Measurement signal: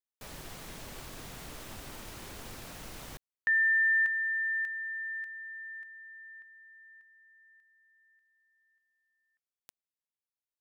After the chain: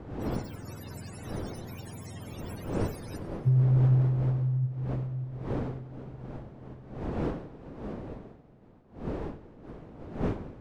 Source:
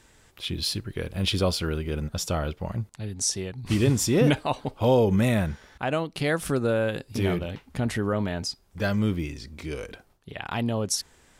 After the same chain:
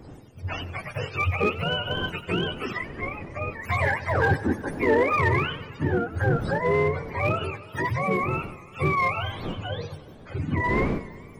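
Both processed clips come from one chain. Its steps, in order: spectrum mirrored in octaves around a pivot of 480 Hz; wind noise 370 Hz -42 dBFS; dynamic EQ 730 Hz, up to -4 dB, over -40 dBFS, Q 1.7; in parallel at -4 dB: overloaded stage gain 24.5 dB; on the sum: warbling echo 92 ms, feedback 72%, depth 144 cents, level -17 dB

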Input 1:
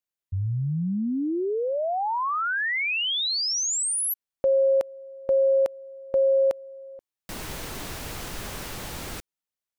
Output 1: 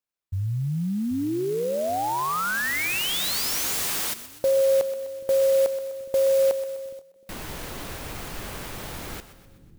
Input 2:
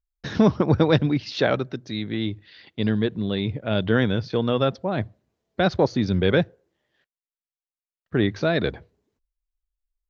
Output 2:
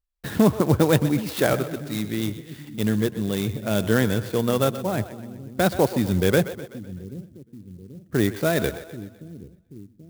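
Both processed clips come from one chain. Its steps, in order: split-band echo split 330 Hz, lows 0.783 s, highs 0.126 s, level -13.5 dB; clock jitter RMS 0.04 ms

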